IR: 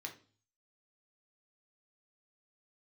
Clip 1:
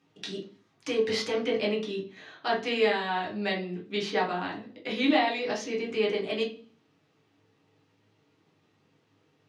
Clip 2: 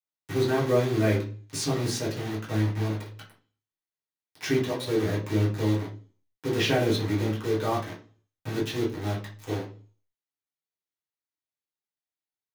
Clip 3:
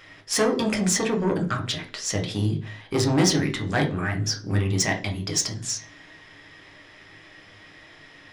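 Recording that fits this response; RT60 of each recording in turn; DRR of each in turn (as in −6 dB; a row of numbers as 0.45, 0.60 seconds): 3; 0.40, 0.40, 0.40 seconds; −3.5, −7.5, 2.0 decibels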